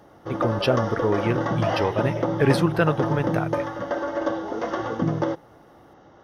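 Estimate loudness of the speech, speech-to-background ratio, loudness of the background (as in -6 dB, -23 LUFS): -25.0 LUFS, 1.5 dB, -26.5 LUFS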